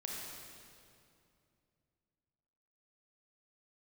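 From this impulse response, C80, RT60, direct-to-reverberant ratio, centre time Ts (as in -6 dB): 0.0 dB, 2.5 s, -3.0 dB, 0.128 s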